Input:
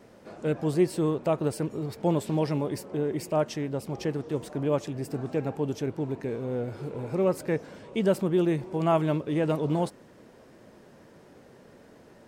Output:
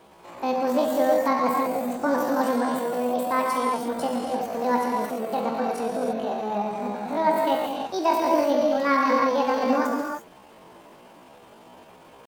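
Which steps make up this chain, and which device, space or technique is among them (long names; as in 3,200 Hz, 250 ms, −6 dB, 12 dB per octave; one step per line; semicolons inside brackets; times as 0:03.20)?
reverb whose tail is shaped and stops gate 370 ms flat, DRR −2.5 dB
chipmunk voice (pitch shifter +9 semitones)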